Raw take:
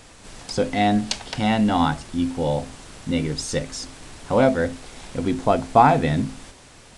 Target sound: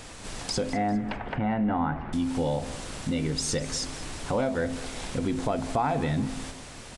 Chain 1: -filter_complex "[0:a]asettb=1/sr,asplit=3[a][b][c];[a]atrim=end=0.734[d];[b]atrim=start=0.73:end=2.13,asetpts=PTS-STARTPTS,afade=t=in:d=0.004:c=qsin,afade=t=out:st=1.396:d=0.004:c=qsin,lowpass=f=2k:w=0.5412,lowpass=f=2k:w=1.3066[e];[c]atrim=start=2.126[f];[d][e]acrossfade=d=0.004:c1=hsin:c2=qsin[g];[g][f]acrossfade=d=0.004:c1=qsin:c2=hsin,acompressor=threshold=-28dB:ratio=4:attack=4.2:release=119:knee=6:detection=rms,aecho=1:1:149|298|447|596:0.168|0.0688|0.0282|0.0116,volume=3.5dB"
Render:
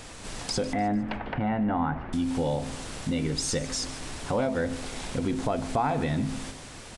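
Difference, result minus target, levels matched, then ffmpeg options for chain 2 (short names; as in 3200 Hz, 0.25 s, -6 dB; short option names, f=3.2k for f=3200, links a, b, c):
echo 50 ms early
-filter_complex "[0:a]asettb=1/sr,asplit=3[a][b][c];[a]atrim=end=0.734[d];[b]atrim=start=0.73:end=2.13,asetpts=PTS-STARTPTS,afade=t=in:d=0.004:c=qsin,afade=t=out:st=1.396:d=0.004:c=qsin,lowpass=f=2k:w=0.5412,lowpass=f=2k:w=1.3066[e];[c]atrim=start=2.126[f];[d][e]acrossfade=d=0.004:c1=hsin:c2=qsin[g];[g][f]acrossfade=d=0.004:c1=qsin:c2=hsin,acompressor=threshold=-28dB:ratio=4:attack=4.2:release=119:knee=6:detection=rms,aecho=1:1:199|398|597|796:0.168|0.0688|0.0282|0.0116,volume=3.5dB"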